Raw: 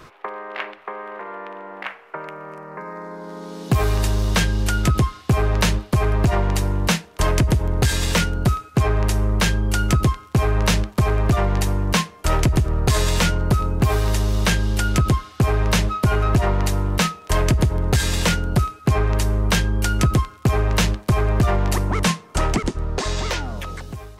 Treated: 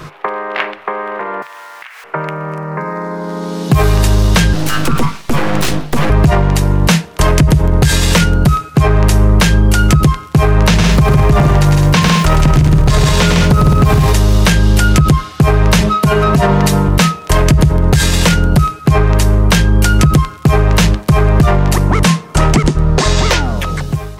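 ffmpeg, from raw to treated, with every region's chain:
ffmpeg -i in.wav -filter_complex "[0:a]asettb=1/sr,asplit=3[link_01][link_02][link_03];[link_01]atrim=end=1.424[link_04];[link_02]atrim=start=1.42:end=2.04,asetpts=PTS-STARTPTS,afade=type=in:duration=0.004:curve=qsin,afade=type=out:start_time=0.616:duration=0.004:curve=qsin,aeval=exprs='val(0)+0.5*0.00841*sgn(val(0))':channel_layout=same,highpass=1400,acompressor=threshold=-40dB:ratio=8:attack=3.2:release=140:knee=1:detection=peak[link_05];[link_03]atrim=start=2.036[link_06];[link_04][link_05]acrossfade=duration=0.004:curve1=hsin:curve2=qsin[link_07];[link_07][link_06]acrossfade=duration=0.004:curve1=qsin:curve2=hsin,asettb=1/sr,asplit=3[link_08][link_09][link_10];[link_08]atrim=end=4.534[link_11];[link_09]atrim=start=4.53:end=6.1,asetpts=PTS-STARTPTS,afade=type=in:duration=0.004:curve=qsin,afade=type=out:start_time=1.566:duration=0.004:curve=qsin,highpass=frequency=70:width=0.5412,highpass=frequency=70:width=1.3066,bandreject=frequency=50:width_type=h:width=6,bandreject=frequency=100:width_type=h:width=6,bandreject=frequency=150:width_type=h:width=6,aeval=exprs='abs(val(0))':channel_layout=same[link_12];[link_10]atrim=start=6.096[link_13];[link_11][link_12]acrossfade=duration=0.004:curve1=hsin:curve2=qsin[link_14];[link_14][link_13]acrossfade=duration=0.004:curve1=qsin:curve2=hsin,asettb=1/sr,asplit=3[link_15][link_16][link_17];[link_15]atrim=end=10.684[link_18];[link_16]atrim=start=10.68:end=14.13,asetpts=PTS-STARTPTS,afade=type=in:duration=0.004:curve=qsin,afade=type=out:start_time=3.446:duration=0.004:curve=qsin,aeval=exprs='val(0)+0.5*0.0158*sgn(val(0))':channel_layout=same,acrossover=split=6600[link_19][link_20];[link_20]acompressor=threshold=-36dB:ratio=4:attack=1:release=60[link_21];[link_19][link_21]amix=inputs=2:normalize=0,aecho=1:1:104|157|212:0.562|0.668|0.316,atrim=end_sample=152145[link_22];[link_17]atrim=start=14.126[link_23];[link_18][link_22]acrossfade=duration=0.004:curve1=hsin:curve2=qsin[link_24];[link_24][link_23]acrossfade=duration=0.004:curve1=qsin:curve2=hsin,asettb=1/sr,asplit=3[link_25][link_26][link_27];[link_25]atrim=end=15.814[link_28];[link_26]atrim=start=15.81:end=16.88,asetpts=PTS-STARTPTS,afade=type=in:duration=0.004:curve=qsin,afade=type=out:start_time=1.066:duration=0.004:curve=qsin,highpass=92,aecho=1:1:4.5:0.56,atrim=end_sample=47187[link_29];[link_27]atrim=start=16.876[link_30];[link_28][link_29]acrossfade=duration=0.004:curve1=hsin:curve2=qsin[link_31];[link_31][link_30]acrossfade=duration=0.004:curve1=qsin:curve2=hsin,equalizer=frequency=150:width_type=o:width=0.28:gain=12.5,alimiter=level_in=13dB:limit=-1dB:release=50:level=0:latency=1,volume=-1dB" out.wav

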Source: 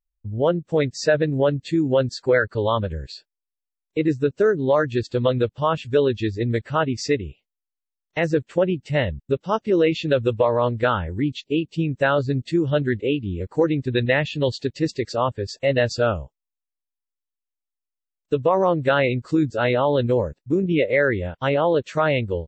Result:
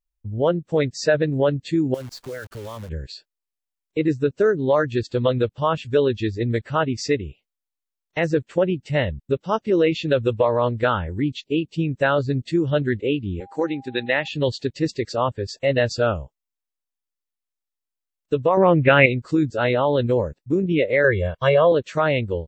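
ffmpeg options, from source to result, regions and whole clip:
ffmpeg -i in.wav -filter_complex "[0:a]asettb=1/sr,asplit=3[link_01][link_02][link_03];[link_01]atrim=end=1.944[link_04];[link_02]atrim=start=1.94:end=2.89,asetpts=PTS-STARTPTS,afade=type=in:duration=0.004:curve=qsin,afade=type=out:start_time=0.946:duration=0.004:curve=qsin,lowshelf=frequency=270:gain=4,acompressor=threshold=-35dB:ratio=3:attack=3.2:release=140:knee=1:detection=peak,acrusher=bits=8:dc=4:mix=0:aa=0.000001[link_05];[link_03]atrim=start=2.886[link_06];[link_04][link_05]acrossfade=duration=0.004:curve1=hsin:curve2=qsin[link_07];[link_07][link_06]acrossfade=duration=0.004:curve1=qsin:curve2=hsin,asettb=1/sr,asplit=3[link_08][link_09][link_10];[link_08]atrim=end=13.404[link_11];[link_09]atrim=start=13.4:end=14.28,asetpts=PTS-STARTPTS,afade=type=in:duration=0.004:curve=qsin,afade=type=out:start_time=0.876:duration=0.004:curve=qsin,highpass=280,equalizer=frequency=440:width=2.9:gain=-6,aeval=exprs='val(0)+0.00631*sin(2*PI*800*n/s)':channel_layout=same[link_12];[link_10]atrim=start=14.276[link_13];[link_11][link_12]acrossfade=duration=0.004:curve1=hsin:curve2=qsin[link_14];[link_14][link_13]acrossfade=duration=0.004:curve1=qsin:curve2=hsin,asettb=1/sr,asplit=3[link_15][link_16][link_17];[link_15]atrim=end=18.574[link_18];[link_16]atrim=start=18.57:end=19.06,asetpts=PTS-STARTPTS,afade=type=in:duration=0.004:curve=qsin,afade=type=out:start_time=0.486:duration=0.004:curve=qsin,lowpass=frequency=2400:width_type=q:width=5.3,lowshelf=frequency=370:gain=8.5[link_19];[link_17]atrim=start=19.056[link_20];[link_18][link_19]acrossfade=duration=0.004:curve1=hsin:curve2=qsin[link_21];[link_21][link_20]acrossfade=duration=0.004:curve1=qsin:curve2=hsin,asettb=1/sr,asplit=3[link_22][link_23][link_24];[link_22]atrim=end=21.044[link_25];[link_23]atrim=start=21.04:end=21.72,asetpts=PTS-STARTPTS,afade=type=in:duration=0.004:curve=qsin,afade=type=out:start_time=0.676:duration=0.004:curve=qsin,bandreject=frequency=2600:width=21,aecho=1:1:1.8:0.99,atrim=end_sample=29988[link_26];[link_24]atrim=start=21.716[link_27];[link_25][link_26]acrossfade=duration=0.004:curve1=hsin:curve2=qsin[link_28];[link_28][link_27]acrossfade=duration=0.004:curve1=qsin:curve2=hsin" out.wav

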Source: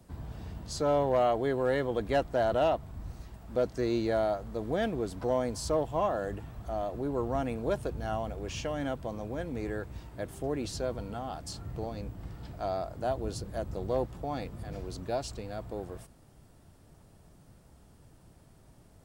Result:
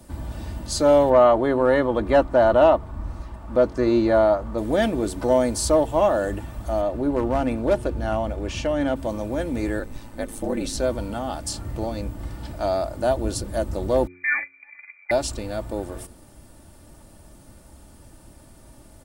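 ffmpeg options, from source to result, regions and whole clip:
ffmpeg -i in.wav -filter_complex "[0:a]asettb=1/sr,asplit=3[link_01][link_02][link_03];[link_01]atrim=end=1.104[link_04];[link_02]atrim=start=1.1:end=4.58,asetpts=PTS-STARTPTS,afade=type=in:duration=0.004:curve=qsin,afade=type=out:start_time=3.476:duration=0.004:curve=qsin,lowpass=frequency=2000:poles=1,equalizer=frequency=1100:width=2.2:gain=7[link_05];[link_03]atrim=start=4.576[link_06];[link_04][link_05]acrossfade=duration=0.004:curve1=hsin:curve2=qsin[link_07];[link_07][link_06]acrossfade=duration=0.004:curve1=qsin:curve2=hsin,asettb=1/sr,asplit=3[link_08][link_09][link_10];[link_08]atrim=end=6.814[link_11];[link_09]atrim=start=6.81:end=8.96,asetpts=PTS-STARTPTS,afade=type=in:duration=0.004:curve=qsin,afade=type=out:start_time=2.146:duration=0.004:curve=qsin,lowpass=frequency=3300:poles=1,asoftclip=type=hard:threshold=-23dB[link_12];[link_10]atrim=start=8.956[link_13];[link_11][link_12]acrossfade=duration=0.004:curve1=hsin:curve2=qsin[link_14];[link_14][link_13]acrossfade=duration=0.004:curve1=qsin:curve2=hsin,asettb=1/sr,asplit=3[link_15][link_16][link_17];[link_15]atrim=end=9.794[link_18];[link_16]atrim=start=9.79:end=10.78,asetpts=PTS-STARTPTS,afade=type=in:duration=0.004:curve=qsin,afade=type=out:start_time=0.986:duration=0.004:curve=qsin,aeval=exprs='val(0)*sin(2*PI*54*n/s)':channel_layout=same,aecho=1:1:3.9:0.33,atrim=end_sample=43659[link_19];[link_17]atrim=start=10.776[link_20];[link_18][link_19]acrossfade=duration=0.004:curve1=hsin:curve2=qsin[link_21];[link_21][link_20]acrossfade=duration=0.004:curve1=qsin:curve2=hsin,asettb=1/sr,asplit=3[link_22][link_23][link_24];[link_22]atrim=end=14.074[link_25];[link_23]atrim=start=14.07:end=15.11,asetpts=PTS-STARTPTS,afade=type=in:duration=0.004:curve=qsin,afade=type=out:start_time=1.036:duration=0.004:curve=qsin,agate=range=-22dB:threshold=-36dB:ratio=16:release=100:detection=peak,lowpass=frequency=2100:width_type=q:width=0.5098,lowpass=frequency=2100:width_type=q:width=0.6013,lowpass=frequency=2100:width_type=q:width=0.9,lowpass=frequency=2100:width_type=q:width=2.563,afreqshift=-2500,aecho=1:1:3.5:0.53,atrim=end_sample=45864[link_26];[link_24]atrim=start=15.106[link_27];[link_25][link_26]acrossfade=duration=0.004:curve1=hsin:curve2=qsin[link_28];[link_28][link_27]acrossfade=duration=0.004:curve1=qsin:curve2=hsin,equalizer=frequency=9500:width=1.5:gain=6.5,aecho=1:1:3.4:0.48,bandreject=frequency=90.28:width_type=h:width=4,bandreject=frequency=180.56:width_type=h:width=4,bandreject=frequency=270.84:width_type=h:width=4,bandreject=frequency=361.12:width_type=h:width=4,bandreject=frequency=451.4:width_type=h:width=4,volume=9dB" out.wav

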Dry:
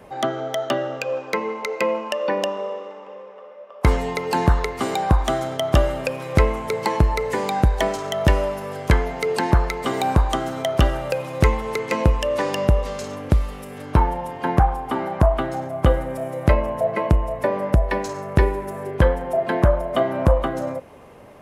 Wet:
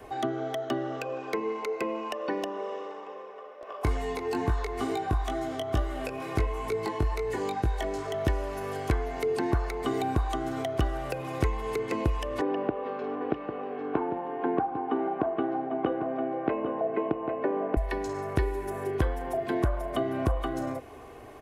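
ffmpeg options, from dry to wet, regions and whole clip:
ffmpeg -i in.wav -filter_complex "[0:a]asettb=1/sr,asplit=3[link_01][link_02][link_03];[link_01]atrim=end=3.614[link_04];[link_02]atrim=start=3.61:end=8.14,asetpts=PTS-STARTPTS,afade=type=in:duration=0.004:curve=qsin,afade=type=out:start_time=4.526:duration=0.004:curve=qsin,acompressor=mode=upward:threshold=-22dB:ratio=2.5:attack=3.2:release=140:knee=2.83:detection=peak,flanger=delay=18:depth=2.3:speed=2.2[link_05];[link_03]atrim=start=8.136[link_06];[link_04][link_05]acrossfade=duration=0.004:curve1=hsin:curve2=qsin[link_07];[link_07][link_06]acrossfade=duration=0.004:curve1=qsin:curve2=hsin,asettb=1/sr,asplit=3[link_08][link_09][link_10];[link_08]atrim=end=12.414[link_11];[link_09]atrim=start=12.41:end=17.77,asetpts=PTS-STARTPTS,afade=type=in:duration=0.004:curve=qsin,afade=type=out:start_time=5.356:duration=0.004:curve=qsin,highpass=frequency=180:width=0.5412,highpass=frequency=180:width=1.3066,equalizer=frequency=290:width_type=q:width=4:gain=3,equalizer=frequency=470:width_type=q:width=4:gain=7,equalizer=frequency=780:width_type=q:width=4:gain=5,equalizer=frequency=2000:width_type=q:width=4:gain=-8,lowpass=frequency=2300:width=0.5412,lowpass=frequency=2300:width=1.3066,aecho=1:1:799:0.282,atrim=end_sample=236376[link_12];[link_10]atrim=start=17.766[link_13];[link_11][link_12]acrossfade=duration=0.004:curve1=hsin:curve2=qsin[link_14];[link_14][link_13]acrossfade=duration=0.004:curve1=qsin:curve2=hsin,aecho=1:1:2.7:0.67,acrossover=split=360|1400|3000[link_15][link_16][link_17][link_18];[link_15]acompressor=threshold=-24dB:ratio=4[link_19];[link_16]acompressor=threshold=-33dB:ratio=4[link_20];[link_17]acompressor=threshold=-42dB:ratio=4[link_21];[link_18]acompressor=threshold=-47dB:ratio=4[link_22];[link_19][link_20][link_21][link_22]amix=inputs=4:normalize=0,volume=-2dB" out.wav

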